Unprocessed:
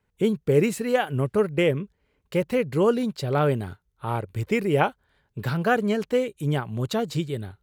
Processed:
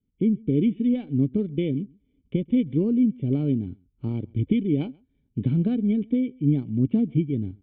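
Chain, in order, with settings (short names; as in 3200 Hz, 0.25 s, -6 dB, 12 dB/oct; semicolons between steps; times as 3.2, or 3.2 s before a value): recorder AGC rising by 13 dB/s; low shelf 120 Hz -6 dB; careless resampling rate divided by 8×, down filtered, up zero stuff; in parallel at -11 dB: crossover distortion -17.5 dBFS; on the sum: vocal tract filter i; tilt -3 dB/oct; outdoor echo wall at 23 m, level -27 dB; gain +1 dB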